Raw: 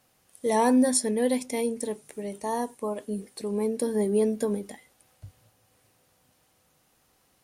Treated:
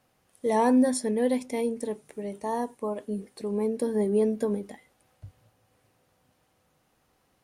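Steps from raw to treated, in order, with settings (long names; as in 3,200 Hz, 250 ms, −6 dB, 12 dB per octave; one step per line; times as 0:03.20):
high-shelf EQ 3,400 Hz −9 dB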